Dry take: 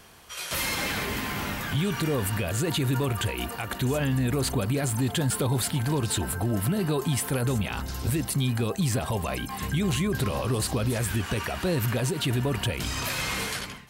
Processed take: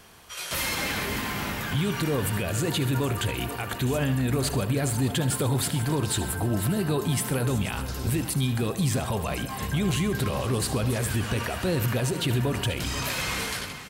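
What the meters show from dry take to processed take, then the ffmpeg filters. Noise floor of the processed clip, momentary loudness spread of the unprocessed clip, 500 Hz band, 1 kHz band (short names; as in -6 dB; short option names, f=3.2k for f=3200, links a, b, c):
-36 dBFS, 4 LU, +0.5 dB, +0.5 dB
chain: -af "aecho=1:1:74|131|482|599:0.211|0.133|0.211|0.106"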